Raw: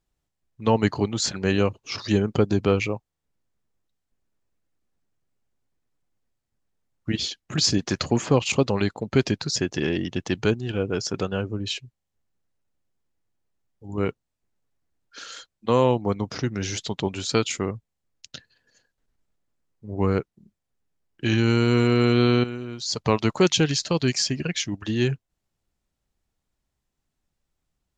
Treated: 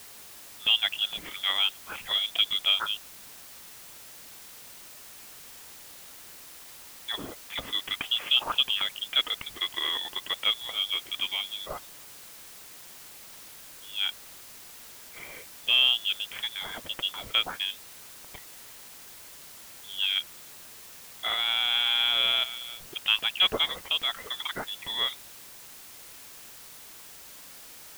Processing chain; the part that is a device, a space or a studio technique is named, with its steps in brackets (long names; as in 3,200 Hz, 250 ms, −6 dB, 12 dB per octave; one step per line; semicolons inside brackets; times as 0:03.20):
scrambled radio voice (band-pass filter 370–2,900 Hz; voice inversion scrambler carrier 3,700 Hz; white noise bed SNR 15 dB)
level −1 dB